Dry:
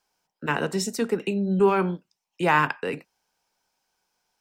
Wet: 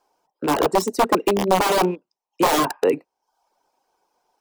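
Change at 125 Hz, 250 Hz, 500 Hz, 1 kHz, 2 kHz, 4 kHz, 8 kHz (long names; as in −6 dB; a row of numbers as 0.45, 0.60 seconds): −2.5, +2.5, +5.0, +6.0, −1.5, +8.0, +7.0 decibels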